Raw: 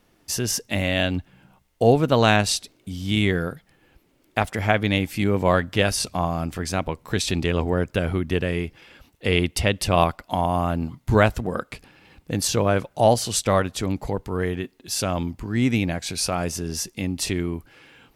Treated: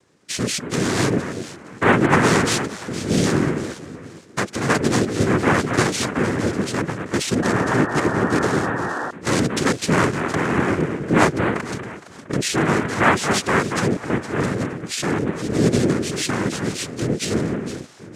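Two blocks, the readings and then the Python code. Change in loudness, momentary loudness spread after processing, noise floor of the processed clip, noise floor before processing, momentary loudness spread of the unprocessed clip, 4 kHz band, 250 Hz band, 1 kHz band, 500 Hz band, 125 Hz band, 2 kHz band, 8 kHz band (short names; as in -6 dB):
+2.5 dB, 10 LU, -41 dBFS, -63 dBFS, 10 LU, 0.0 dB, +5.0 dB, +3.0 dB, +1.5 dB, +1.5 dB, +5.5 dB, +1.5 dB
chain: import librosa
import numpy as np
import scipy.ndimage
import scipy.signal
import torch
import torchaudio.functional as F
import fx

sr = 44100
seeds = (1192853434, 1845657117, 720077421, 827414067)

y = fx.peak_eq(x, sr, hz=180.0, db=7.5, octaves=0.73)
y = fx.echo_alternate(y, sr, ms=232, hz=980.0, feedback_pct=51, wet_db=-6.5)
y = fx.noise_vocoder(y, sr, seeds[0], bands=3)
y = fx.spec_paint(y, sr, seeds[1], shape='noise', start_s=7.42, length_s=1.69, low_hz=240.0, high_hz=1900.0, level_db=-26.0)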